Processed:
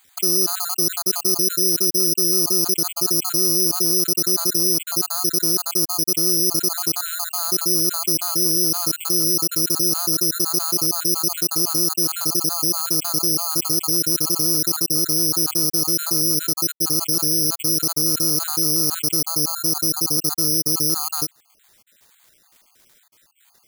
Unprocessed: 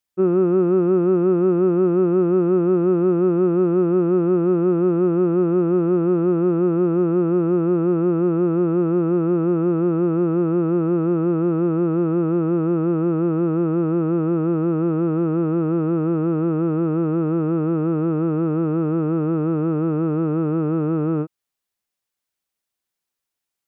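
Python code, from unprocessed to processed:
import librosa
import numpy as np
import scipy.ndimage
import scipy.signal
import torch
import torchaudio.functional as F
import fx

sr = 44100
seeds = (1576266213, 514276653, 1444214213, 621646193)

y = fx.spec_dropout(x, sr, seeds[0], share_pct=47)
y = fx.lowpass(y, sr, hz=1200.0, slope=24, at=(19.21, 20.18))
y = (np.kron(scipy.signal.resample_poly(y, 1, 8), np.eye(8)[0]) * 8)[:len(y)]
y = fx.env_flatten(y, sr, amount_pct=70)
y = F.gain(torch.from_numpy(y), -11.0).numpy()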